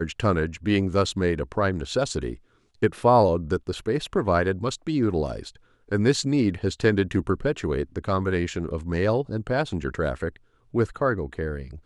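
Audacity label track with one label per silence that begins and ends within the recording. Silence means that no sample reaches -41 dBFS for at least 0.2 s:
2.360000	2.820000	silence
5.560000	5.890000	silence
10.360000	10.740000	silence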